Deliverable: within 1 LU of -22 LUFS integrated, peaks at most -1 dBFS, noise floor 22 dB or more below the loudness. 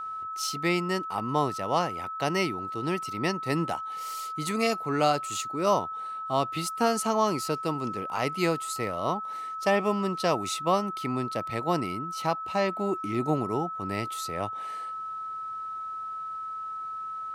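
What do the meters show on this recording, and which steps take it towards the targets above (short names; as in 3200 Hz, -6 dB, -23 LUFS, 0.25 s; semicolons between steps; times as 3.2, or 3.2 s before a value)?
steady tone 1300 Hz; tone level -33 dBFS; loudness -29.0 LUFS; peak -11.0 dBFS; loudness target -22.0 LUFS
-> notch 1300 Hz, Q 30; gain +7 dB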